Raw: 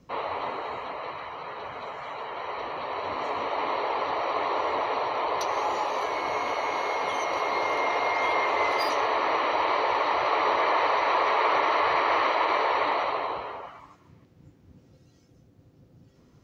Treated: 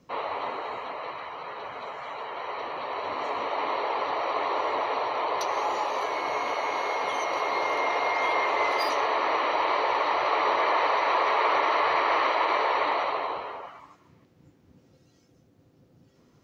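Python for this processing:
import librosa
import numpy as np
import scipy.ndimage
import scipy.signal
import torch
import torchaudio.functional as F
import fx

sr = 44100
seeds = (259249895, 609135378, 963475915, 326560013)

y = fx.low_shelf(x, sr, hz=120.0, db=-10.5)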